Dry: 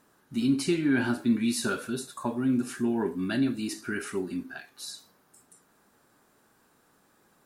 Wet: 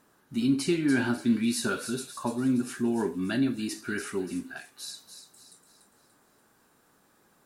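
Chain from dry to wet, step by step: thin delay 0.29 s, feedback 44%, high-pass 3900 Hz, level -7 dB

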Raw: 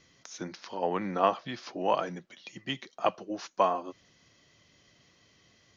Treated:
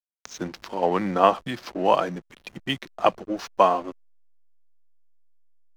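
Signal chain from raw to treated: backlash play -42 dBFS; gain +7.5 dB

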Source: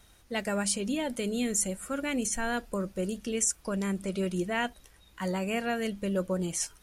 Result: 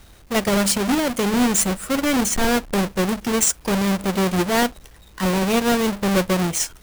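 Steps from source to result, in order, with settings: half-waves squared off; gain +6.5 dB

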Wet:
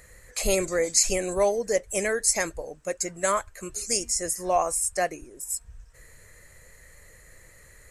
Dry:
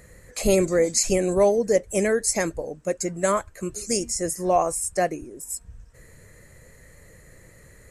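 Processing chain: bell 200 Hz -11.5 dB 2.9 oct; gain +1.5 dB

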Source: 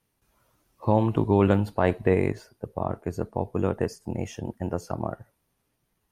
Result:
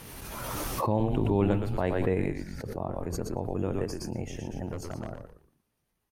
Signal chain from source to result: dynamic EQ 1200 Hz, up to -4 dB, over -37 dBFS, Q 1; 4.67–5.12 overloaded stage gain 24.5 dB; frequency-shifting echo 0.117 s, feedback 31%, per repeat -86 Hz, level -6 dB; backwards sustainer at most 24 dB/s; gain -6 dB

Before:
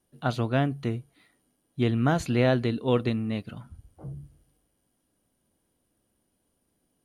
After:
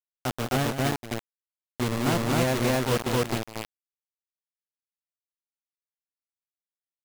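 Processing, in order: high shelf 3800 Hz -8.5 dB; bit-crush 4-bit; on a send: loudspeakers at several distances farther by 61 m -10 dB, 89 m 0 dB; on the sum: gain -4 dB

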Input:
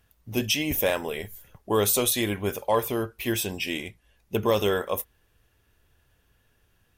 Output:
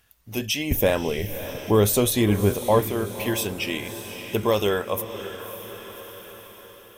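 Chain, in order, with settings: 0.71–2.81 low shelf 390 Hz +12 dB; AGC gain up to 4.5 dB; diffused feedback echo 0.571 s, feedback 49%, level -12.5 dB; mismatched tape noise reduction encoder only; gain -3 dB

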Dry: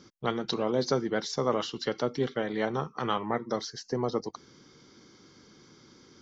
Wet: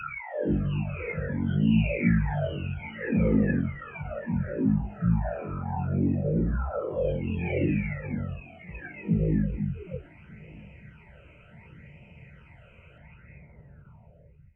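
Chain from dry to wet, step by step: spectral delay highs early, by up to 0.671 s; in parallel at -2 dB: limiter -28 dBFS, peak gain reduction 11 dB; on the sum: phaser stages 8, 1.6 Hz, lowest notch 560–3700 Hz; on a send: thinning echo 0.518 s, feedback 46%, high-pass 170 Hz, level -23.5 dB; on the sum: speed mistake 78 rpm record played at 33 rpm; ending taper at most 230 dB/s; gain +3 dB

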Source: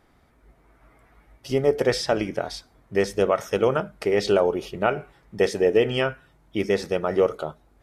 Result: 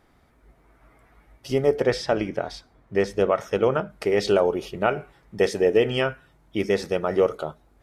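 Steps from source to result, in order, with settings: 1.78–3.9 LPF 3700 Hz 6 dB/oct

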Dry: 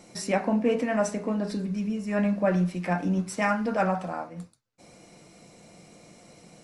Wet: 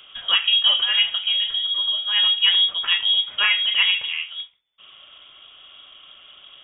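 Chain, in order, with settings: inverted band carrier 3500 Hz; gain +6 dB

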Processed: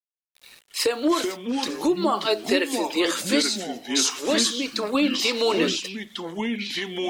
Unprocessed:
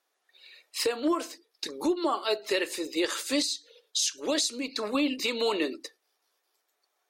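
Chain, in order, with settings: sample gate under -49.5 dBFS; echoes that change speed 0.158 s, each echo -4 st, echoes 2, each echo -6 dB; gain +5 dB

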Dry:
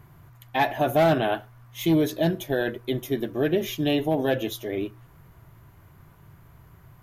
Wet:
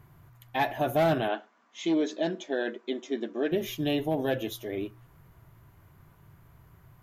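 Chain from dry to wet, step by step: 1.28–3.52 brick-wall FIR band-pass 180–7800 Hz; gain -4.5 dB

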